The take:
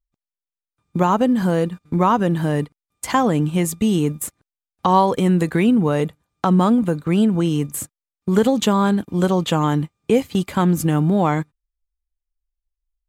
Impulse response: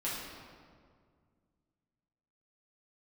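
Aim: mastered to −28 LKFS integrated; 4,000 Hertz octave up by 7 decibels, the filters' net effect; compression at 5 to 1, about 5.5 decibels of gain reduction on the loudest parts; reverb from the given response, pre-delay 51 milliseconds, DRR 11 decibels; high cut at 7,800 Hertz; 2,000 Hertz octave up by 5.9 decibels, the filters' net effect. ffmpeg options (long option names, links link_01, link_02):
-filter_complex "[0:a]lowpass=7800,equalizer=frequency=2000:width_type=o:gain=6,equalizer=frequency=4000:width_type=o:gain=7,acompressor=threshold=-16dB:ratio=5,asplit=2[link_01][link_02];[1:a]atrim=start_sample=2205,adelay=51[link_03];[link_02][link_03]afir=irnorm=-1:irlink=0,volume=-15.5dB[link_04];[link_01][link_04]amix=inputs=2:normalize=0,volume=-6.5dB"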